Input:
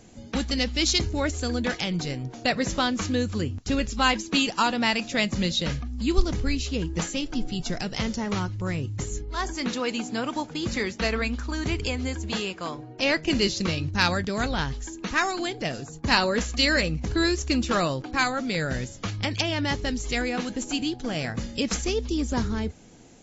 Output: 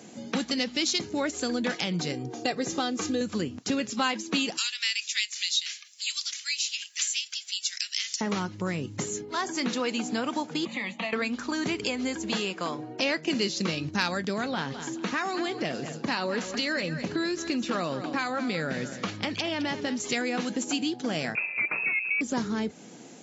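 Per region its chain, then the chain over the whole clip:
2.12–3.21 bell 2000 Hz -7 dB 2.8 oct + comb 2.5 ms, depth 60%
4.57–8.21 inverse Chebyshev high-pass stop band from 470 Hz, stop band 70 dB + high shelf 4500 Hz +9.5 dB
10.65–11.13 fixed phaser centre 1500 Hz, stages 6 + compressor 3:1, threshold -30 dBFS + BPF 210–5600 Hz
14.33–20 compressor 2:1, threshold -26 dBFS + air absorption 73 m + feedback echo 0.211 s, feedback 24%, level -13 dB
21.35–22.21 CVSD 64 kbps + inverted band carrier 2600 Hz
whole clip: HPF 160 Hz 24 dB/oct; compressor 2.5:1, threshold -33 dBFS; gain +5 dB

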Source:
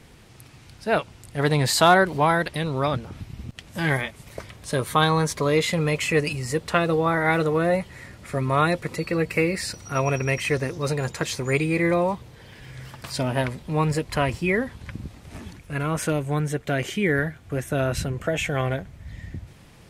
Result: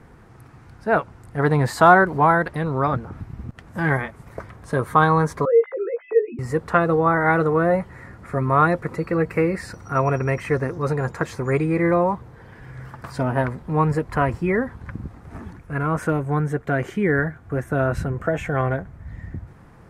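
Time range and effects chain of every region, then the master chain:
5.45–6.39 sine-wave speech + band-pass 330 Hz, Q 0.87 + doubler 17 ms -6 dB
whole clip: resonant high shelf 2100 Hz -12.5 dB, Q 1.5; notch 590 Hz, Q 12; gain +2.5 dB

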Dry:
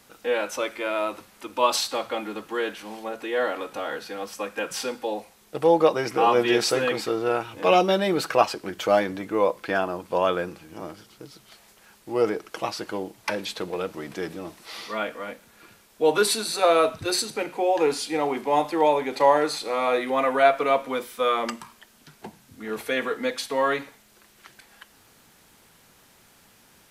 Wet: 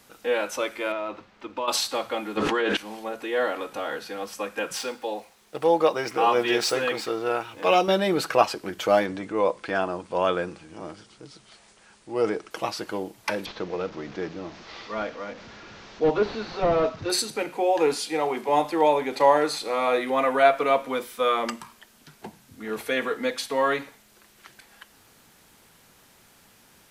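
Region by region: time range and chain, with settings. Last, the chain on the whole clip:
0.92–1.68 block floating point 5-bit + compressor, threshold -24 dBFS + air absorption 190 m
2.37–2.77 air absorption 93 m + notches 60/120/180/240/300/360/420/480 Hz + fast leveller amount 100%
4.77–7.88 median filter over 3 samples + low shelf 350 Hz -6.5 dB
9.06–12.51 brick-wall FIR low-pass 10000 Hz + transient shaper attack -4 dB, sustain 0 dB
13.46–17.1 delta modulation 32 kbps, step -36 dBFS + high shelf 2500 Hz -8 dB
17.95–18.49 HPF 140 Hz + notch 280 Hz, Q 6.6
whole clip: dry

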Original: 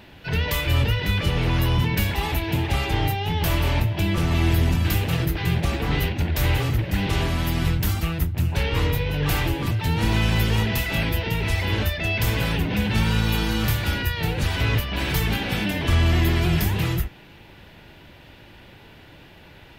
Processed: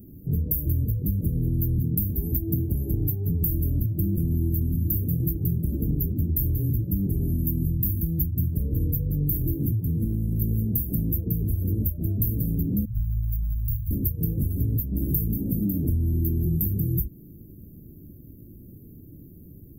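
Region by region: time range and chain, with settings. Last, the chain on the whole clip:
9.8–10.42 high shelf 12000 Hz -9 dB + compressor 2.5:1, threshold -24 dBFS
12.85–13.91 inverse Chebyshev band-stop 530–5700 Hz, stop band 80 dB + comb 5.8 ms, depth 49%
whole clip: inverse Chebyshev band-stop 1100–4900 Hz, stop band 70 dB; tilt +1.5 dB/oct; compressor 6:1, threshold -30 dBFS; gain +9 dB

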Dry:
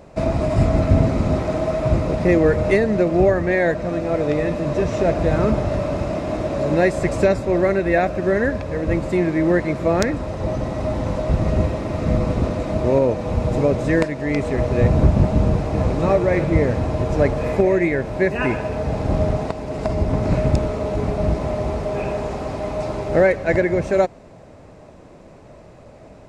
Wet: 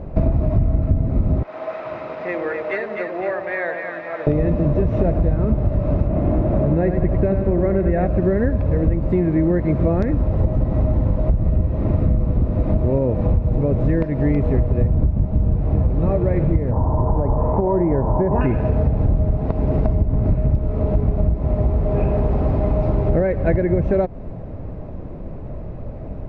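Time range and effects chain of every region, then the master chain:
1.43–4.27 HPF 1200 Hz + air absorption 92 m + split-band echo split 900 Hz, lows 94 ms, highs 0.254 s, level -5 dB
6.07–8.06 air absorption 240 m + lo-fi delay 93 ms, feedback 55%, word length 7-bit, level -7 dB
16.71–18.41 synth low-pass 950 Hz, resonance Q 8.9 + compressor, threshold -15 dBFS
whole clip: LPF 3900 Hz 12 dB/oct; tilt -4 dB/oct; compressor 12:1, threshold -16 dBFS; gain +2.5 dB

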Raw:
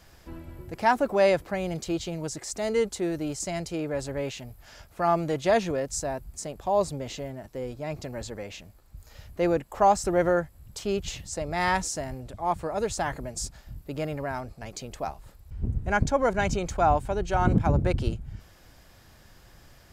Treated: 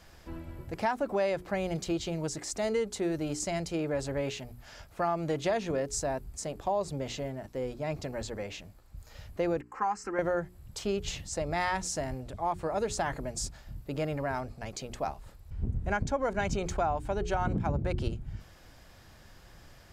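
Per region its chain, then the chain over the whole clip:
9.61–10.19 three-band isolator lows -21 dB, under 260 Hz, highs -20 dB, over 6300 Hz + fixed phaser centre 1500 Hz, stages 4 + comb 3.8 ms, depth 44%
whole clip: high shelf 9700 Hz -6.5 dB; notches 60/120/180/240/300/360/420 Hz; compressor 6:1, threshold -26 dBFS

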